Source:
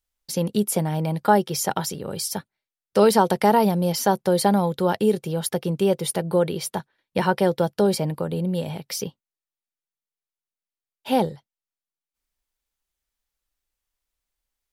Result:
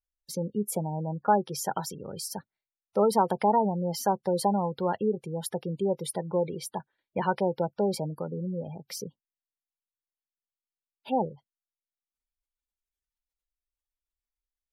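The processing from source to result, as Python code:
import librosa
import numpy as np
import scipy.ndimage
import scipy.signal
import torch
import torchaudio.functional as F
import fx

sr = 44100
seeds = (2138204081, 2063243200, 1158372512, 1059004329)

y = fx.dynamic_eq(x, sr, hz=890.0, q=1.2, threshold_db=-33.0, ratio=4.0, max_db=4)
y = fx.spec_gate(y, sr, threshold_db=-20, keep='strong')
y = y * librosa.db_to_amplitude(-8.0)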